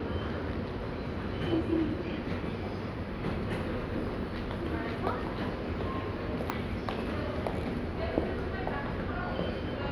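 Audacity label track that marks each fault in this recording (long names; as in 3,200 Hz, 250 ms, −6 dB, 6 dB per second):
6.500000	6.500000	click −17 dBFS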